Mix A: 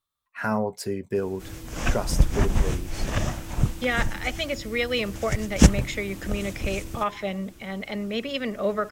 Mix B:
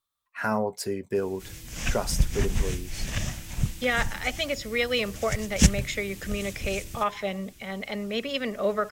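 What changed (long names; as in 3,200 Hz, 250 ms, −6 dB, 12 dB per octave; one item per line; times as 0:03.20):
background: add flat-topped bell 620 Hz −10 dB 2.7 octaves
master: add bass and treble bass −4 dB, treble +2 dB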